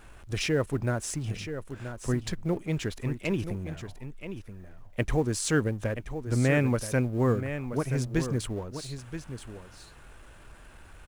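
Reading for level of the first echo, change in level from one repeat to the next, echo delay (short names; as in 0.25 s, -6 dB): -10.0 dB, no steady repeat, 0.978 s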